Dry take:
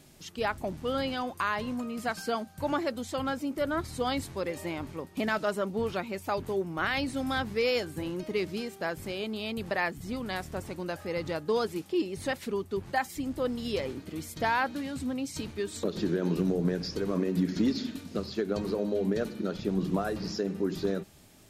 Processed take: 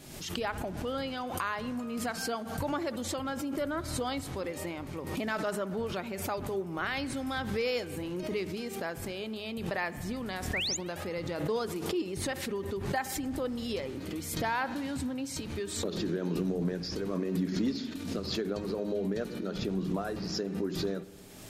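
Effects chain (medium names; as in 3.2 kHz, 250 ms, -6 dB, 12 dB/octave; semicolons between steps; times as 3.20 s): recorder AGC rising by 29 dB/s; de-hum 52.05 Hz, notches 4; painted sound rise, 10.53–10.77 s, 1.7–7.5 kHz -28 dBFS; spring tank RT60 1.8 s, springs 58 ms, chirp 60 ms, DRR 16 dB; swell ahead of each attack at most 52 dB/s; trim -4 dB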